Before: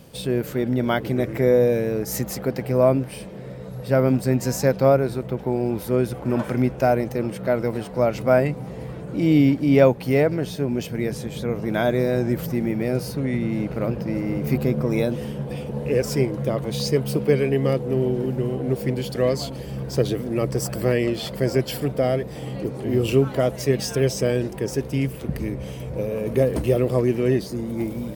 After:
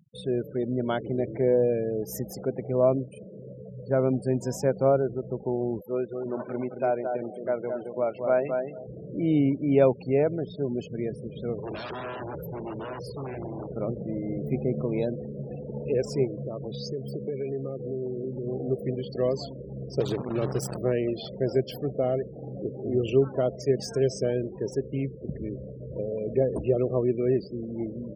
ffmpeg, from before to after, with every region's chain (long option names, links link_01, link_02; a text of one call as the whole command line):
ffmpeg -i in.wav -filter_complex "[0:a]asettb=1/sr,asplit=3[link_01][link_02][link_03];[link_01]atrim=end=5.814[link_04];[link_02]atrim=start=5.81:end=8.87,asetpts=PTS-STARTPTS,afade=type=in:duration=0.004:curve=qsin,afade=type=out:start_time=3.056:duration=0.004:curve=qsin,highpass=frequency=440:poles=1,asplit=2[link_05][link_06];[link_06]adelay=220,lowpass=frequency=3400:poles=1,volume=-5dB,asplit=2[link_07][link_08];[link_08]adelay=220,lowpass=frequency=3400:poles=1,volume=0.17,asplit=2[link_09][link_10];[link_10]adelay=220,lowpass=frequency=3400:poles=1,volume=0.17[link_11];[link_05][link_07][link_09][link_11]amix=inputs=4:normalize=0,atrim=end_sample=134946[link_12];[link_03]atrim=start=8.866[link_13];[link_04][link_12]acrossfade=duration=0.004:curve1=hsin:curve2=qsin[link_14];[link_14][link_13]acrossfade=duration=0.004:curve1=qsin:curve2=hsin,asettb=1/sr,asplit=3[link_15][link_16][link_17];[link_15]atrim=end=11.584[link_18];[link_16]atrim=start=11.58:end=13.71,asetpts=PTS-STARTPTS,afade=type=in:duration=0.004:curve=qsin,afade=type=out:start_time=2.126:duration=0.004:curve=qsin,aecho=1:1:2.1:0.59,atrim=end_sample=93933,aeval=exprs='0.0668*(abs(mod(val(0)/0.0668+3,4)-2)-1)':channel_layout=same[link_19];[link_17]atrim=start=13.706[link_20];[link_18][link_19]acrossfade=duration=0.004:curve1=hsin:curve2=qsin[link_21];[link_21][link_20]acrossfade=duration=0.004:curve1=qsin:curve2=hsin,asettb=1/sr,asplit=3[link_22][link_23][link_24];[link_22]atrim=end=16.274[link_25];[link_23]atrim=start=16.27:end=18.47,asetpts=PTS-STARTPTS,afade=type=in:duration=0.004:curve=qsin,afade=type=out:start_time=2.196:duration=0.004:curve=qsin,acompressor=threshold=-23dB:ratio=6:attack=3.2:release=140:knee=1:detection=peak,aecho=1:1:875:0.0841,atrim=end_sample=97020[link_26];[link_24]atrim=start=18.466[link_27];[link_25][link_26]acrossfade=duration=0.004:curve1=hsin:curve2=qsin[link_28];[link_28][link_27]acrossfade=duration=0.004:curve1=qsin:curve2=hsin,asettb=1/sr,asplit=3[link_29][link_30][link_31];[link_29]atrim=end=20.004[link_32];[link_30]atrim=start=20:end=20.78,asetpts=PTS-STARTPTS,afade=type=in:duration=0.004:curve=qsin,afade=type=out:start_time=0.776:duration=0.004:curve=qsin,adynamicequalizer=threshold=0.01:dfrequency=150:dqfactor=1.8:tfrequency=150:tqfactor=1.8:attack=5:release=100:ratio=0.375:range=2:mode=boostabove:tftype=bell,acrossover=split=460|3000[link_33][link_34][link_35];[link_34]acompressor=threshold=-22dB:ratio=5:attack=3.2:release=140:knee=2.83:detection=peak[link_36];[link_33][link_36][link_35]amix=inputs=3:normalize=0,acrusher=bits=5:dc=4:mix=0:aa=0.000001[link_37];[link_31]atrim=start=20.776[link_38];[link_32][link_37]acrossfade=duration=0.004:curve1=hsin:curve2=qsin[link_39];[link_39][link_38]acrossfade=duration=0.004:curve1=qsin:curve2=hsin,highpass=68,afftfilt=real='re*gte(hypot(re,im),0.0355)':imag='im*gte(hypot(re,im),0.0355)':win_size=1024:overlap=0.75,equalizer=frequency=400:width_type=o:width=0.33:gain=5,equalizer=frequency=630:width_type=o:width=0.33:gain=3,equalizer=frequency=2000:width_type=o:width=0.33:gain=-9,volume=-7dB" out.wav